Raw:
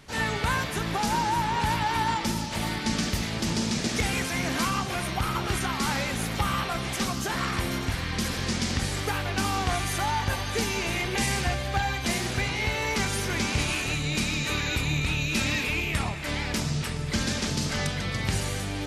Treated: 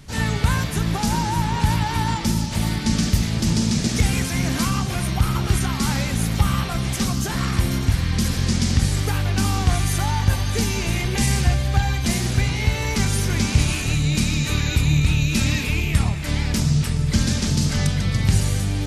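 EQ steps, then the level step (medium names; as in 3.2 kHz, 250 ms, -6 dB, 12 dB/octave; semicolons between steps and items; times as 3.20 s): tone controls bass +12 dB, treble +6 dB; 0.0 dB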